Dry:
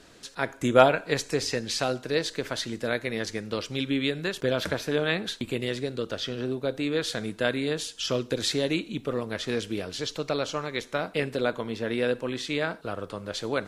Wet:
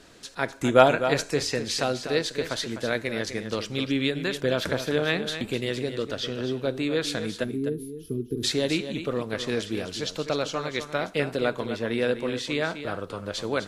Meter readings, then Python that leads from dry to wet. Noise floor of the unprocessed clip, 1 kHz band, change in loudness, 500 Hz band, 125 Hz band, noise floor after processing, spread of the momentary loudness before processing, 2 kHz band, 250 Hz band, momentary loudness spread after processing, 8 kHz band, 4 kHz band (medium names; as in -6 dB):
-50 dBFS, +1.5 dB, +1.0 dB, +1.0 dB, +1.5 dB, -44 dBFS, 6 LU, +1.0 dB, +1.5 dB, 7 LU, +1.0 dB, +1.0 dB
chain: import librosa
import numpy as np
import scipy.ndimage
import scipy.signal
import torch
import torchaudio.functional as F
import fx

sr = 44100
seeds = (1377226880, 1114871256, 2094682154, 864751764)

y = fx.spec_box(x, sr, start_s=7.44, length_s=1.0, low_hz=460.0, high_hz=9800.0, gain_db=-29)
y = y + 10.0 ** (-10.0 / 20.0) * np.pad(y, (int(253 * sr / 1000.0), 0))[:len(y)]
y = y * 10.0 ** (1.0 / 20.0)